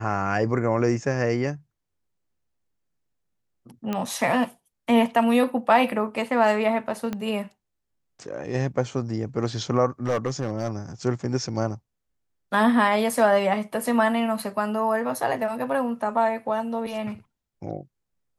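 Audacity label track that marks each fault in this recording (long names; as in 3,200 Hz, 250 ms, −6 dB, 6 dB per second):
3.930000	3.930000	click −14 dBFS
7.130000	7.130000	click −16 dBFS
10.060000	10.690000	clipping −19 dBFS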